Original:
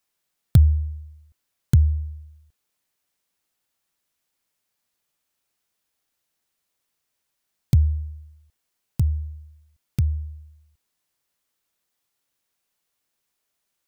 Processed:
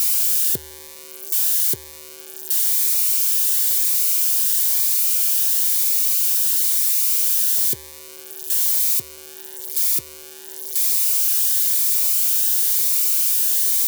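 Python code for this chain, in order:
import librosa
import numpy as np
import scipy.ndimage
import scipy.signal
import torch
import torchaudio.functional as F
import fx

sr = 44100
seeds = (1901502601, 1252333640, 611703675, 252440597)

y = x + 0.5 * 10.0 ** (-11.0 / 20.0) * np.diff(np.sign(x), prepend=np.sign(x[:1]))
y = fx.highpass_res(y, sr, hz=400.0, q=4.7)
y = fx.notch_comb(y, sr, f0_hz=660.0)
y = fx.notch_cascade(y, sr, direction='rising', hz=1.0)
y = y * 10.0 ** (-2.5 / 20.0)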